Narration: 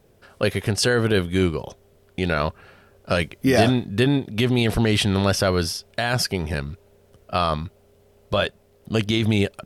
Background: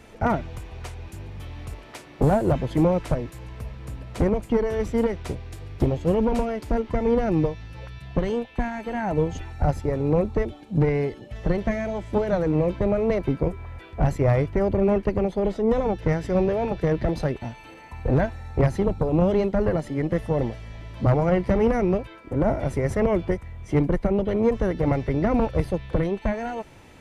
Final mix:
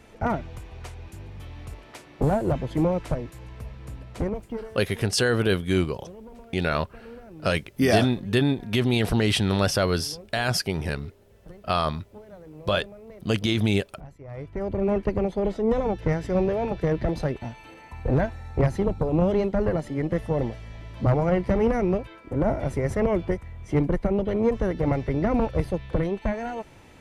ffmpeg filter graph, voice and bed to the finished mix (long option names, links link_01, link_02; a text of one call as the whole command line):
ffmpeg -i stem1.wav -i stem2.wav -filter_complex "[0:a]adelay=4350,volume=-2.5dB[link_01];[1:a]volume=18dB,afade=type=out:start_time=3.97:duration=0.85:silence=0.105925,afade=type=in:start_time=14.28:duration=0.75:silence=0.0891251[link_02];[link_01][link_02]amix=inputs=2:normalize=0" out.wav